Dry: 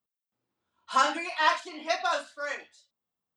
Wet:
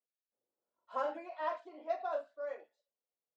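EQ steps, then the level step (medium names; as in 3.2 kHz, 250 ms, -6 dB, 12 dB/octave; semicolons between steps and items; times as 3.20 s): band-pass filter 530 Hz, Q 2.9; -1.0 dB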